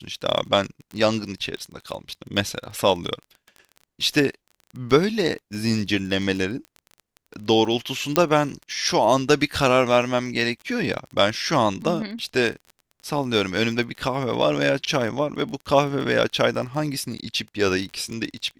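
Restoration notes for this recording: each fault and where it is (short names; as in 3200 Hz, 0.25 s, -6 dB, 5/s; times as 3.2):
crackle 21/s -31 dBFS
8.16 pop -2 dBFS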